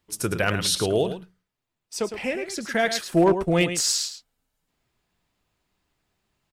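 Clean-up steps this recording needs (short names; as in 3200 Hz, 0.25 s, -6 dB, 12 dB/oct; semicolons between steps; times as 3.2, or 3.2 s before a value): clip repair -11.5 dBFS; inverse comb 0.108 s -10 dB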